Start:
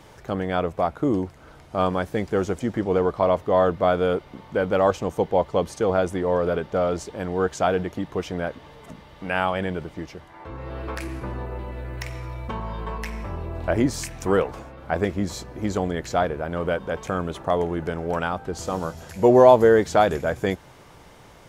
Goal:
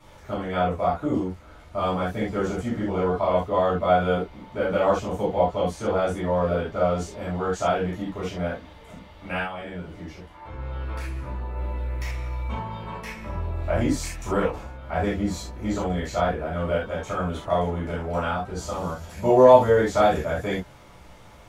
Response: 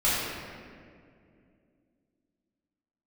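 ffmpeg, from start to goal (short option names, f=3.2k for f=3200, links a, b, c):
-filter_complex "[0:a]asettb=1/sr,asplit=3[a][b][c];[a]atrim=end=9.384[d];[b]atrim=start=9.38:end=11.56,asetpts=PTS-STARTPTS,afade=t=in:d=0.004:c=qsin,afade=t=out:st=2.176:d=0.004:c=qsin,acompressor=threshold=-33dB:ratio=2[e];[c]atrim=start=11.556[f];[d][e]acrossfade=d=0.004:c1=hsin:c2=qsin[g];[g][f]acrossfade=d=0.004:c1=qsin:c2=hsin[h];[1:a]atrim=start_sample=2205,atrim=end_sample=3969[i];[h][i]afir=irnorm=-1:irlink=0,volume=-12dB"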